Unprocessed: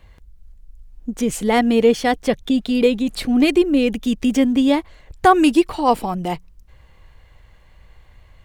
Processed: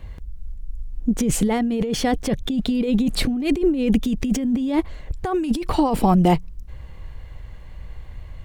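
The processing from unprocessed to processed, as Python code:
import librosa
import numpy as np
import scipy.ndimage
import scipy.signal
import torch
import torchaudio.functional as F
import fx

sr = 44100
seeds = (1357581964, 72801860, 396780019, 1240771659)

y = fx.low_shelf(x, sr, hz=420.0, db=9.0)
y = fx.over_compress(y, sr, threshold_db=-17.0, ratio=-1.0)
y = F.gain(torch.from_numpy(y), -2.5).numpy()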